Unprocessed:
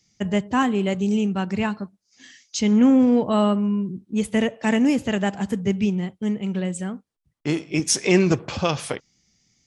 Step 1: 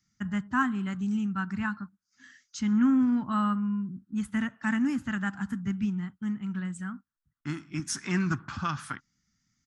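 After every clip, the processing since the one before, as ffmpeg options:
-af "firequalizer=gain_entry='entry(270,0);entry(460,-25);entry(880,-3);entry(1400,11);entry(2300,-7);entry(7600,-5)':delay=0.05:min_phase=1,volume=0.447"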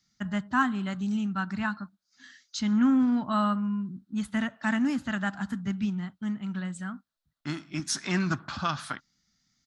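-af "equalizer=f=100:t=o:w=0.67:g=-5,equalizer=f=630:t=o:w=0.67:g=11,equalizer=f=4000:t=o:w=0.67:g=11"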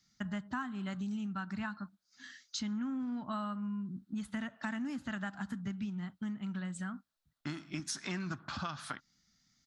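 -af "acompressor=threshold=0.0158:ratio=6"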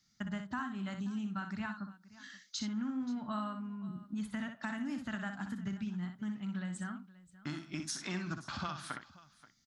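-af "aecho=1:1:61|530:0.422|0.112,volume=0.891"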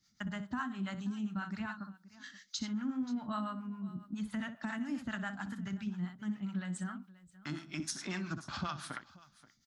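-filter_complex "[0:a]acrossover=split=610[s0][s1];[s0]aeval=exprs='val(0)*(1-0.7/2+0.7/2*cos(2*PI*7.3*n/s))':c=same[s2];[s1]aeval=exprs='val(0)*(1-0.7/2-0.7/2*cos(2*PI*7.3*n/s))':c=same[s3];[s2][s3]amix=inputs=2:normalize=0,volume=1.5"

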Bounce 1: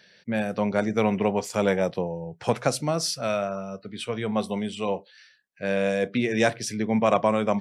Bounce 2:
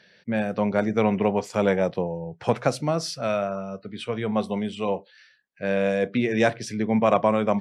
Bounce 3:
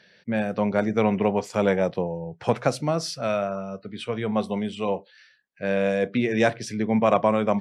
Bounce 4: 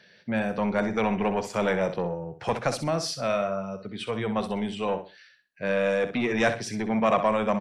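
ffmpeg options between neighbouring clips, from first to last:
-af "lowpass=f=3100:p=1,volume=1.19"
-af anull
-filter_complex "[0:a]acrossover=split=740[s0][s1];[s0]asoftclip=type=tanh:threshold=0.0668[s2];[s2][s1]amix=inputs=2:normalize=0,aecho=1:1:63|126|189:0.299|0.0746|0.0187"

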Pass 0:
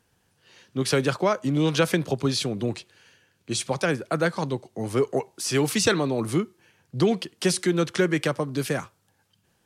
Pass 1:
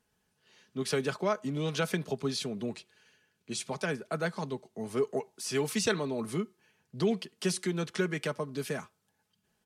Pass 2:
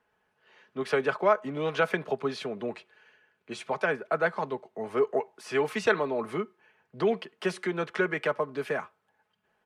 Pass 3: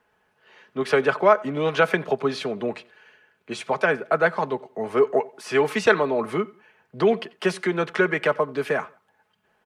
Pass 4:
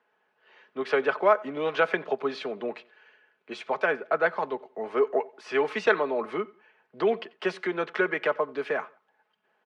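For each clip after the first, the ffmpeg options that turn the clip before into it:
-af "aecho=1:1:4.7:0.51,volume=0.355"
-filter_complex "[0:a]acrossover=split=410 2500:gain=0.2 1 0.0891[s0][s1][s2];[s0][s1][s2]amix=inputs=3:normalize=0,volume=2.66"
-filter_complex "[0:a]asplit=2[s0][s1];[s1]adelay=90,lowpass=f=4900:p=1,volume=0.0708,asplit=2[s2][s3];[s3]adelay=90,lowpass=f=4900:p=1,volume=0.3[s4];[s0][s2][s4]amix=inputs=3:normalize=0,volume=2.11"
-af "highpass=280,lowpass=4100,volume=0.631"

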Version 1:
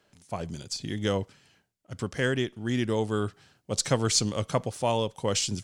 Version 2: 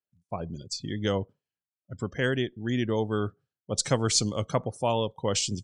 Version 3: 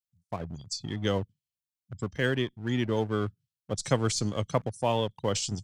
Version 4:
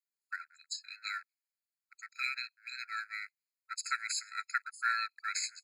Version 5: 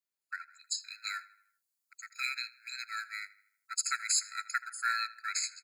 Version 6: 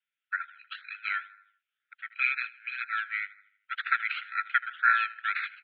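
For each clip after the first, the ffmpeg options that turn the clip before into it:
-af "afftdn=nr=34:nf=-42"
-filter_complex "[0:a]acrossover=split=190|2600[s0][s1][s2];[s1]aeval=exprs='sgn(val(0))*max(abs(val(0))-0.00668,0)':c=same[s3];[s2]alimiter=limit=0.0794:level=0:latency=1:release=94[s4];[s0][s3][s4]amix=inputs=3:normalize=0"
-af "aeval=exprs='val(0)*sin(2*PI*790*n/s)':c=same,afftfilt=real='re*eq(mod(floor(b*sr/1024/1300),2),1)':imag='im*eq(mod(floor(b*sr/1024/1300),2),1)':win_size=1024:overlap=0.75,volume=1.33"
-filter_complex "[0:a]acrossover=split=2200|3700|4600[s0][s1][s2][s3];[s3]dynaudnorm=f=130:g=9:m=3.16[s4];[s0][s1][s2][s4]amix=inputs=4:normalize=0,asplit=2[s5][s6];[s6]adelay=79,lowpass=f=3500:p=1,volume=0.133,asplit=2[s7][s8];[s8]adelay=79,lowpass=f=3500:p=1,volume=0.53,asplit=2[s9][s10];[s10]adelay=79,lowpass=f=3500:p=1,volume=0.53,asplit=2[s11][s12];[s12]adelay=79,lowpass=f=3500:p=1,volume=0.53,asplit=2[s13][s14];[s14]adelay=79,lowpass=f=3500:p=1,volume=0.53[s15];[s5][s7][s9][s11][s13][s15]amix=inputs=6:normalize=0"
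-filter_complex "[0:a]asplit=2[s0][s1];[s1]acrusher=samples=20:mix=1:aa=0.000001:lfo=1:lforange=12:lforate=2,volume=0.631[s2];[s0][s2]amix=inputs=2:normalize=0,asuperpass=centerf=2200:order=20:qfactor=0.96,volume=2.66"

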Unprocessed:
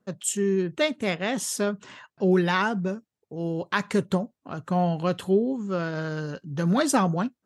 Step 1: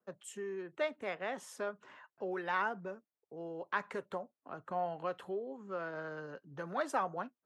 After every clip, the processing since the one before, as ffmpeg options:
-filter_complex "[0:a]acrossover=split=340 2200:gain=0.224 1 0.178[s0][s1][s2];[s0][s1][s2]amix=inputs=3:normalize=0,acrossover=split=470[s3][s4];[s3]acompressor=threshold=0.0126:ratio=6[s5];[s5][s4]amix=inputs=2:normalize=0,volume=0.422"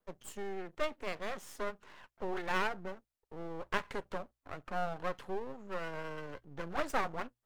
-af "aeval=exprs='max(val(0),0)':c=same,bandreject=f=60:t=h:w=6,bandreject=f=120:t=h:w=6,volume=1.68"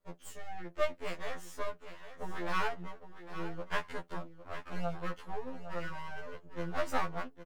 -af "aecho=1:1:807:0.251,afftfilt=real='re*2*eq(mod(b,4),0)':imag='im*2*eq(mod(b,4),0)':win_size=2048:overlap=0.75,volume=1.26"

